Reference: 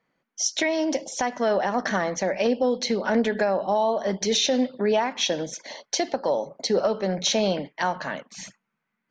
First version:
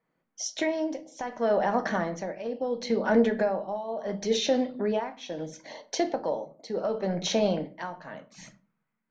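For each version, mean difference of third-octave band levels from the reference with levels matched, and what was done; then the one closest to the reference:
4.0 dB: high-shelf EQ 2,200 Hz −9 dB
shaped tremolo triangle 0.72 Hz, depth 80%
rectangular room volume 200 cubic metres, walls furnished, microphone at 0.6 metres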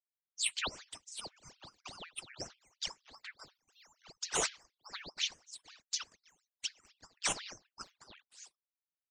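13.5 dB: spectral dynamics exaggerated over time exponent 1.5
Butterworth high-pass 1,900 Hz 96 dB per octave
ring modulator whose carrier an LFO sweeps 1,700 Hz, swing 90%, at 4.1 Hz
level −3.5 dB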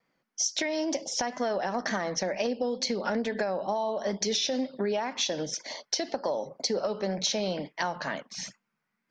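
2.0 dB: tape wow and flutter 59 cents
parametric band 5,100 Hz +7 dB 0.41 octaves
downward compressor, threshold −24 dBFS, peak gain reduction 7.5 dB
level −1.5 dB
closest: third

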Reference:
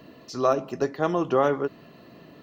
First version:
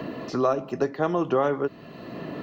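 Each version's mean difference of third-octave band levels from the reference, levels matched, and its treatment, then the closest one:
4.5 dB: high-shelf EQ 5,100 Hz −9 dB
multiband upward and downward compressor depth 70%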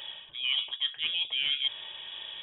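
14.5 dB: reversed playback
downward compressor 6 to 1, threshold −35 dBFS, peak gain reduction 18 dB
reversed playback
voice inversion scrambler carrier 3,600 Hz
level +7 dB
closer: first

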